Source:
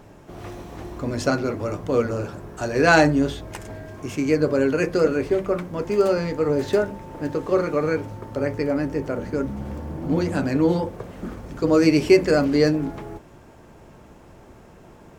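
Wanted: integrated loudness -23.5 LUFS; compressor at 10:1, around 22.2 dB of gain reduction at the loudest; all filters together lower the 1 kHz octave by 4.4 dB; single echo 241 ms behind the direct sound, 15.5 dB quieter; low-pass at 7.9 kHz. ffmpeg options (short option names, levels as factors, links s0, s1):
-af "lowpass=7900,equalizer=f=1000:t=o:g=-6.5,acompressor=threshold=0.0224:ratio=10,aecho=1:1:241:0.168,volume=5.01"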